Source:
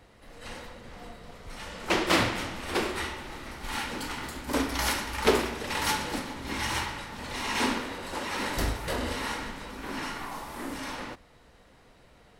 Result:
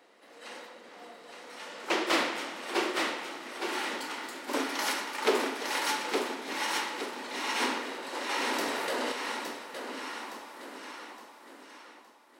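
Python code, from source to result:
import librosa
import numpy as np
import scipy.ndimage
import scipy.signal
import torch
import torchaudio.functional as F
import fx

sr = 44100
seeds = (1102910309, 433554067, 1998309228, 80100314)

p1 = fx.fade_out_tail(x, sr, length_s=4.13)
p2 = 10.0 ** (-19.5 / 20.0) * np.tanh(p1 / 10.0 ** (-19.5 / 20.0))
p3 = p1 + F.gain(torch.from_numpy(p2), -4.0).numpy()
p4 = scipy.signal.sosfilt(scipy.signal.butter(4, 280.0, 'highpass', fs=sr, output='sos'), p3)
p5 = fx.peak_eq(p4, sr, hz=12000.0, db=-4.0, octaves=0.76)
p6 = p5 + fx.echo_feedback(p5, sr, ms=865, feedback_pct=40, wet_db=-5, dry=0)
p7 = fx.env_flatten(p6, sr, amount_pct=70, at=(8.29, 9.12))
y = F.gain(torch.from_numpy(p7), -6.0).numpy()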